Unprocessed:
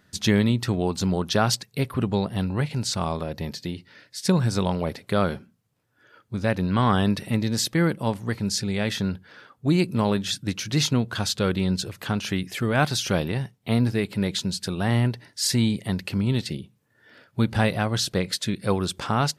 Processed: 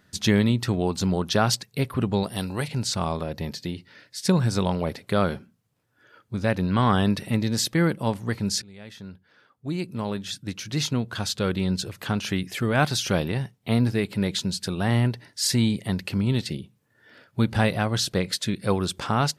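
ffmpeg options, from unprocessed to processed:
ffmpeg -i in.wav -filter_complex "[0:a]asettb=1/sr,asplit=3[link_01][link_02][link_03];[link_01]atrim=end=2.234[link_04];[link_02]atrim=start=2.23:end=2.68,asetpts=PTS-STARTPTS,afade=type=in:duration=0.004:curve=qsin,afade=type=out:start_time=0.446:duration=0.004:curve=qsin,bass=frequency=250:gain=-6,treble=frequency=4000:gain=12[link_05];[link_03]atrim=start=2.676[link_06];[link_04][link_05]acrossfade=duration=0.004:curve1=hsin:curve2=qsin[link_07];[link_07][link_06]acrossfade=duration=0.004:curve1=qsin:curve2=hsin,asplit=2[link_08][link_09];[link_08]atrim=end=8.62,asetpts=PTS-STARTPTS,afade=type=out:start_time=8.616:duration=0.004:curve=hsin:silence=0.0794328[link_10];[link_09]atrim=start=8.62,asetpts=PTS-STARTPTS,afade=type=in:duration=3.51:silence=0.0794328[link_11];[link_10][link_11]concat=n=2:v=0:a=1" out.wav

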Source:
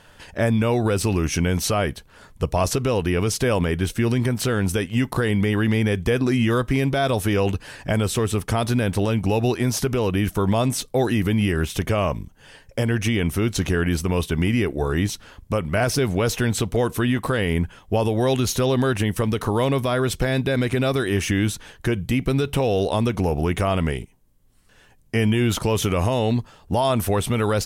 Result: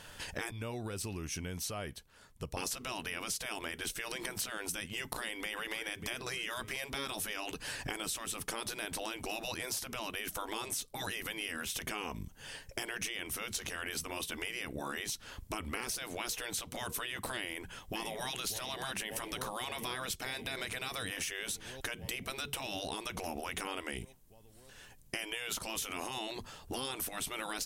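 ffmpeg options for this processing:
ffmpeg -i in.wav -filter_complex "[0:a]asplit=2[link_01][link_02];[link_02]afade=type=in:start_time=4.97:duration=0.01,afade=type=out:start_time=5.57:duration=0.01,aecho=0:1:590|1180|1770:0.149624|0.0448871|0.0134661[link_03];[link_01][link_03]amix=inputs=2:normalize=0,asplit=2[link_04][link_05];[link_05]afade=type=in:start_time=17.37:duration=0.01,afade=type=out:start_time=18.32:duration=0.01,aecho=0:1:580|1160|1740|2320|2900|3480|4060|4640|5220|5800|6380:0.211349|0.158512|0.118884|0.0891628|0.0668721|0.0501541|0.0376156|0.0282117|0.0211588|0.0158691|0.0119018[link_06];[link_04][link_06]amix=inputs=2:normalize=0,asplit=3[link_07][link_08][link_09];[link_07]atrim=end=0.512[link_10];[link_08]atrim=start=0.508:end=2.572,asetpts=PTS-STARTPTS,volume=-11.5dB[link_11];[link_09]atrim=start=2.568[link_12];[link_10][link_11]acrossfade=duration=0.004:curve1=hsin:curve2=hsin[link_13];[link_13][link_12]acrossfade=duration=0.004:curve1=hsin:curve2=hsin,highshelf=frequency=2800:gain=8.5,afftfilt=real='re*lt(hypot(re,im),0.282)':imag='im*lt(hypot(re,im),0.282)':win_size=1024:overlap=0.75,acompressor=threshold=-32dB:ratio=6,volume=-3.5dB" out.wav

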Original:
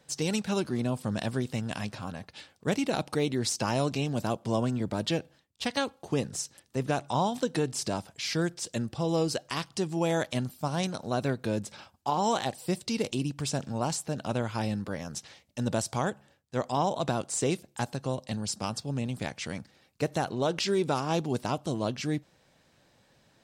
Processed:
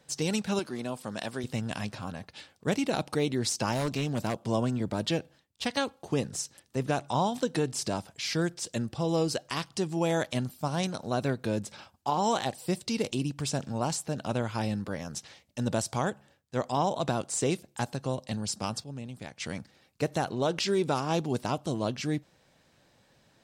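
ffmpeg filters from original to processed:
ffmpeg -i in.wav -filter_complex "[0:a]asettb=1/sr,asplit=3[link_01][link_02][link_03];[link_01]atrim=end=0.594[link_04];[link_02]atrim=start=0.59:end=1.44,asetpts=PTS-STARTPTS,afade=type=in:duration=0.004:curve=qsin,afade=type=out:start_time=0.846:duration=0.004:curve=qsin,highpass=frequency=430:poles=1[link_05];[link_03]atrim=start=1.436[link_06];[link_04][link_05]acrossfade=duration=0.004:curve1=hsin:curve2=qsin[link_07];[link_07][link_06]acrossfade=duration=0.004:curve1=qsin:curve2=hsin,asettb=1/sr,asplit=3[link_08][link_09][link_10];[link_08]atrim=end=3.724[link_11];[link_09]atrim=start=3.72:end=4.35,asetpts=PTS-STARTPTS,afade=type=in:duration=0.004:curve=qsin,afade=type=out:start_time=0.626:duration=0.004:curve=qsin,aeval=exprs='0.075*(abs(mod(val(0)/0.075+3,4)-2)-1)':channel_layout=same[link_12];[link_10]atrim=start=4.346[link_13];[link_11][link_12]acrossfade=duration=0.004:curve1=hsin:curve2=qsin[link_14];[link_14][link_13]acrossfade=duration=0.004:curve1=qsin:curve2=hsin,asplit=3[link_15][link_16][link_17];[link_15]atrim=end=18.842[link_18];[link_16]atrim=start=18.838:end=19.402,asetpts=PTS-STARTPTS,volume=-8dB[link_19];[link_17]atrim=start=19.398[link_20];[link_18][link_19]acrossfade=duration=0.004:curve1=hsin:curve2=hsin[link_21];[link_21][link_20]acrossfade=duration=0.004:curve1=hsin:curve2=hsin" out.wav

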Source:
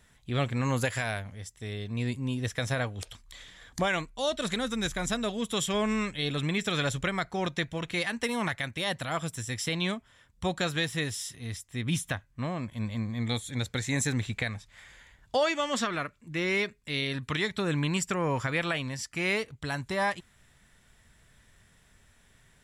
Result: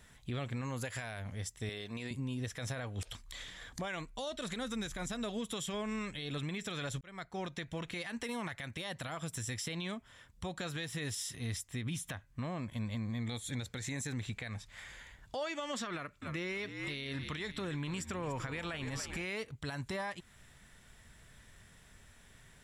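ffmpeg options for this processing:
ffmpeg -i in.wav -filter_complex "[0:a]asettb=1/sr,asplit=3[link_01][link_02][link_03];[link_01]atrim=end=1.694[link_04];[link_02]atrim=start=1.69:end=2.11,asetpts=PTS-STARTPTS,afade=type=in:duration=0.004:curve=qsin,afade=type=out:start_time=0.416:duration=0.004:curve=qsin,highpass=frequency=530:poles=1[link_05];[link_03]atrim=start=2.106[link_06];[link_04][link_05]acrossfade=duration=0.004:curve1=hsin:curve2=qsin[link_07];[link_07][link_06]acrossfade=duration=0.004:curve1=qsin:curve2=hsin,asettb=1/sr,asplit=3[link_08][link_09][link_10];[link_08]atrim=end=15.934[link_11];[link_09]atrim=start=15.93:end=19.25,asetpts=PTS-STARTPTS,afade=type=in:duration=0.004:curve=qsin,afade=type=out:start_time=3.316:duration=0.004:curve=qsin,asplit=7[link_12][link_13][link_14][link_15][link_16][link_17][link_18];[link_13]adelay=287,afreqshift=-61,volume=-14dB[link_19];[link_14]adelay=574,afreqshift=-122,volume=-19.2dB[link_20];[link_15]adelay=861,afreqshift=-183,volume=-24.4dB[link_21];[link_16]adelay=1148,afreqshift=-244,volume=-29.6dB[link_22];[link_17]adelay=1435,afreqshift=-305,volume=-34.8dB[link_23];[link_18]adelay=1722,afreqshift=-366,volume=-40dB[link_24];[link_12][link_19][link_20][link_21][link_22][link_23][link_24]amix=inputs=7:normalize=0,atrim=end_sample=146412[link_25];[link_10]atrim=start=19.246[link_26];[link_11][link_25]acrossfade=duration=0.004:curve1=hsin:curve2=qsin[link_27];[link_27][link_26]acrossfade=duration=0.004:curve1=qsin:curve2=hsin,asplit=2[link_28][link_29];[link_28]atrim=end=7.01,asetpts=PTS-STARTPTS,afade=type=out:start_time=7.006:duration=0.004:curve=hsin[link_30];[link_29]atrim=start=7.01,asetpts=PTS-STARTPTS,afade=type=in:duration=1.15[link_31];[link_30][link_31]concat=n=2:v=0:a=1,acompressor=threshold=-35dB:ratio=6,alimiter=level_in=8dB:limit=-24dB:level=0:latency=1:release=62,volume=-8dB,volume=2dB" out.wav

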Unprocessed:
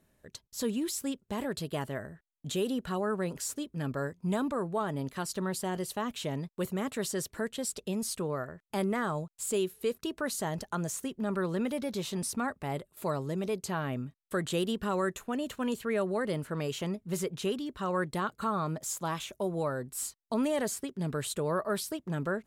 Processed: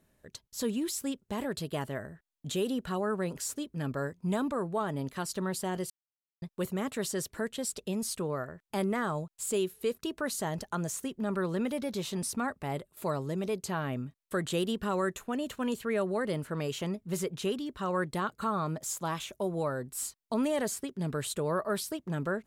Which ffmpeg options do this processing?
ffmpeg -i in.wav -filter_complex "[0:a]asplit=3[link_01][link_02][link_03];[link_01]atrim=end=5.9,asetpts=PTS-STARTPTS,afade=type=out:start_time=5.896:duration=0.004:curve=hsin[link_04];[link_02]atrim=start=5.9:end=6.42,asetpts=PTS-STARTPTS,volume=0[link_05];[link_03]atrim=start=6.42,asetpts=PTS-STARTPTS,afade=type=in:duration=0.004:curve=hsin[link_06];[link_04][link_05][link_06]concat=n=3:v=0:a=1" out.wav

